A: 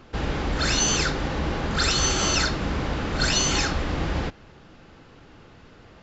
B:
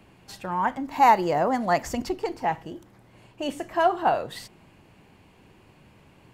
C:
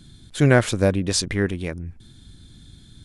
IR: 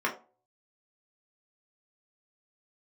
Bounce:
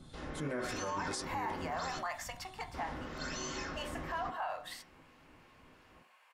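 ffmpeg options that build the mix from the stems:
-filter_complex "[0:a]volume=-11.5dB,asplit=3[a][b][c];[a]atrim=end=1.99,asetpts=PTS-STARTPTS,afade=t=out:st=1.986:d=0.004:c=hsin[d];[b]atrim=start=1.99:end=2.74,asetpts=PTS-STARTPTS,volume=0[e];[c]atrim=start=2.74,asetpts=PTS-STARTPTS,afade=t=in:d=0.004:c=hsin[f];[d][e][f]concat=n=3:v=0:a=1,asplit=2[g][h];[h]volume=-13.5dB[i];[1:a]highpass=f=770:w=0.5412,highpass=f=770:w=1.3066,acompressor=threshold=-28dB:ratio=2.5,adelay=350,volume=-8.5dB,asplit=2[j][k];[k]volume=-9.5dB[l];[2:a]volume=-6dB,asplit=2[m][n];[n]volume=-19dB[o];[g][m]amix=inputs=2:normalize=0,acrossover=split=1500[p][q];[p]aeval=exprs='val(0)*(1-0.5/2+0.5/2*cos(2*PI*3*n/s))':c=same[r];[q]aeval=exprs='val(0)*(1-0.5/2-0.5/2*cos(2*PI*3*n/s))':c=same[s];[r][s]amix=inputs=2:normalize=0,acompressor=threshold=-45dB:ratio=2,volume=0dB[t];[3:a]atrim=start_sample=2205[u];[i][l][o]amix=inputs=3:normalize=0[v];[v][u]afir=irnorm=-1:irlink=0[w];[j][t][w]amix=inputs=3:normalize=0,alimiter=level_in=5dB:limit=-24dB:level=0:latency=1:release=31,volume=-5dB"

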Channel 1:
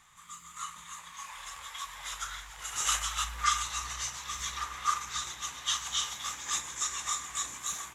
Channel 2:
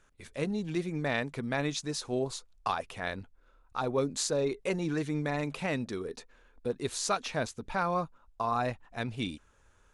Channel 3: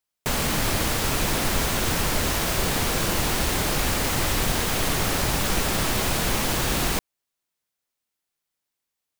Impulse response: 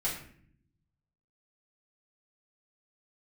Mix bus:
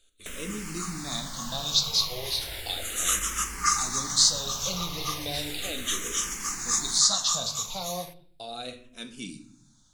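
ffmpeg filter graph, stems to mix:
-filter_complex "[0:a]bandreject=f=7.6k:w=18,dynaudnorm=f=220:g=7:m=4dB,aexciter=amount=2.8:drive=2.9:freq=4.5k,adelay=200,volume=-1.5dB,asplit=2[a][b];[b]volume=-23.5dB[c];[1:a]highshelf=f=2.7k:t=q:w=3:g=13,volume=-6.5dB,asplit=2[d][e];[e]volume=-6.5dB[f];[2:a]aemphasis=mode=reproduction:type=cd,acrossover=split=2500|5700[g][h][i];[g]acompressor=threshold=-43dB:ratio=4[j];[h]acompressor=threshold=-43dB:ratio=4[k];[i]acompressor=threshold=-42dB:ratio=4[l];[j][k][l]amix=inputs=3:normalize=0,volume=-1.5dB,asplit=2[m][n];[n]volume=-10.5dB[o];[3:a]atrim=start_sample=2205[p];[c][f][o]amix=inputs=3:normalize=0[q];[q][p]afir=irnorm=-1:irlink=0[r];[a][d][m][r]amix=inputs=4:normalize=0,asplit=2[s][t];[t]afreqshift=-0.35[u];[s][u]amix=inputs=2:normalize=1"

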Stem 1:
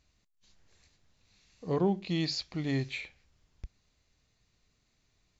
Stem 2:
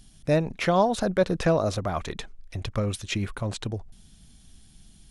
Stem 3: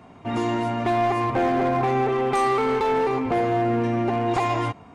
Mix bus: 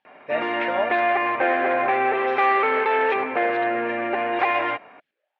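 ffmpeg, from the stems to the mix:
-filter_complex "[0:a]aeval=exprs='val(0)*sin(2*PI*490*n/s+490*0.7/1.3*sin(2*PI*1.3*n/s))':c=same,volume=-5.5dB[a];[1:a]agate=range=-11dB:threshold=-41dB:ratio=16:detection=peak,volume=-6dB,asplit=3[b][c][d];[b]atrim=end=1,asetpts=PTS-STARTPTS,afade=t=out:st=0.996:d=0.004:c=hsin[e];[c]atrim=start=1:end=2.97,asetpts=PTS-STARTPTS,volume=0[f];[d]atrim=start=2.97,asetpts=PTS-STARTPTS,afade=t=in:d=0.004:c=hsin[g];[e][f][g]concat=n=3:v=0:a=1[h];[2:a]adelay=50,volume=2.5dB[i];[a][h][i]amix=inputs=3:normalize=0,highpass=490,equalizer=f=610:t=q:w=4:g=8,equalizer=f=990:t=q:w=4:g=-3,equalizer=f=1.7k:t=q:w=4:g=9,equalizer=f=2.4k:t=q:w=4:g=6,lowpass=f=3.1k:w=0.5412,lowpass=f=3.1k:w=1.3066,bandreject=f=680:w=12"

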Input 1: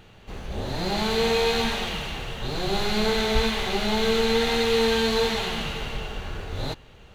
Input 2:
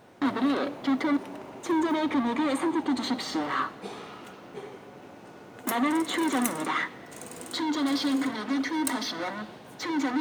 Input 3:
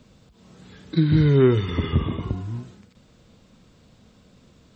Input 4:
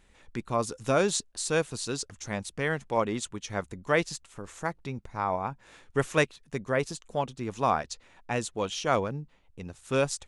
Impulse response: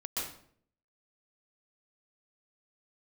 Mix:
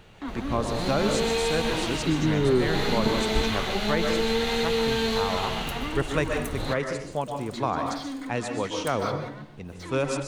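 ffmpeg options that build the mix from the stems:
-filter_complex "[0:a]volume=-2dB[a];[1:a]volume=-10dB,asplit=2[b][c];[c]volume=-16dB[d];[2:a]highpass=230,adelay=1100,volume=-2dB[e];[3:a]highshelf=f=5.8k:g=-6.5,volume=-1.5dB,asplit=2[f][g];[g]volume=-5.5dB[h];[4:a]atrim=start_sample=2205[i];[d][h]amix=inputs=2:normalize=0[j];[j][i]afir=irnorm=-1:irlink=0[k];[a][b][e][f][k]amix=inputs=5:normalize=0,acrossover=split=290[l][m];[m]acompressor=threshold=-22dB:ratio=6[n];[l][n]amix=inputs=2:normalize=0"

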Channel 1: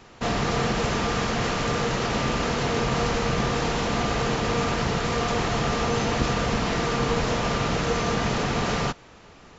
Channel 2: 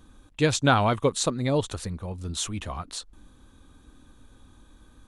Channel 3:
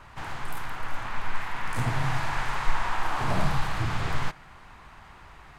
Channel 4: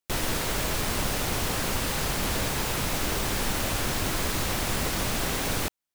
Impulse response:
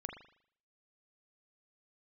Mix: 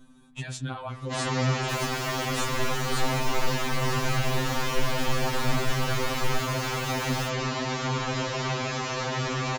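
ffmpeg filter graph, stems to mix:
-filter_complex "[0:a]lowshelf=f=140:g=-6.5,bandreject=f=60:t=h:w=6,bandreject=f=120:t=h:w=6,asoftclip=type=tanh:threshold=-13dB,adelay=900,volume=0.5dB[a];[1:a]acompressor=threshold=-29dB:ratio=16,volume=-2.5dB,asplit=2[b][c];[c]volume=-3.5dB[d];[2:a]adelay=2100,volume=-5.5dB[e];[3:a]aeval=exprs='0.158*(cos(1*acos(clip(val(0)/0.158,-1,1)))-cos(1*PI/2))+0.0447*(cos(5*acos(clip(val(0)/0.158,-1,1)))-cos(5*PI/2))':c=same,adelay=1600,volume=-12.5dB[f];[4:a]atrim=start_sample=2205[g];[d][g]afir=irnorm=-1:irlink=0[h];[a][b][e][f][h]amix=inputs=5:normalize=0,aeval=exprs='val(0)+0.00501*(sin(2*PI*50*n/s)+sin(2*PI*2*50*n/s)/2+sin(2*PI*3*50*n/s)/3+sin(2*PI*4*50*n/s)/4+sin(2*PI*5*50*n/s)/5)':c=same,afftfilt=real='re*2.45*eq(mod(b,6),0)':imag='im*2.45*eq(mod(b,6),0)':win_size=2048:overlap=0.75"

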